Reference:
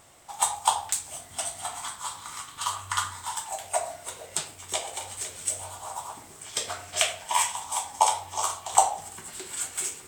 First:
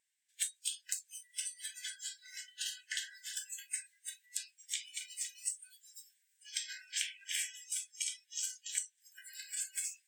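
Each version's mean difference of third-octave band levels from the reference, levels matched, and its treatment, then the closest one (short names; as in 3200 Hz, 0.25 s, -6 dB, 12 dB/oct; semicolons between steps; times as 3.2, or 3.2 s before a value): 16.5 dB: brick-wall FIR high-pass 1500 Hz; compressor 6:1, threshold -32 dBFS, peak gain reduction 13.5 dB; spectral noise reduction 26 dB; gain -1 dB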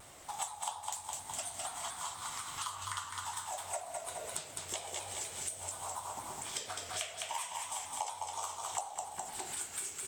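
6.0 dB: feedback echo 0.207 s, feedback 44%, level -6.5 dB; compressor 5:1, threshold -39 dBFS, peak gain reduction 22.5 dB; shaped vibrato saw down 4.2 Hz, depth 100 cents; gain +1 dB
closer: second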